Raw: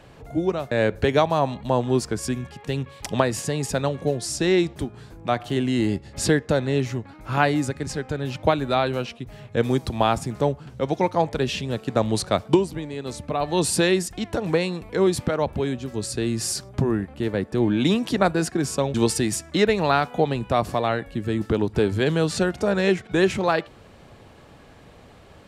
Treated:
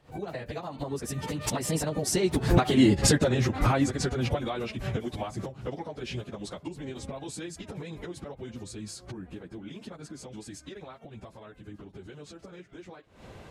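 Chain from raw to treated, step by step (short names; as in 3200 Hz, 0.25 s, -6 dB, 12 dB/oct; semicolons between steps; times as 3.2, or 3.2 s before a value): recorder AGC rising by 66 dB/s; Doppler pass-by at 5.6, 28 m/s, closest 27 m; plain phase-vocoder stretch 0.53×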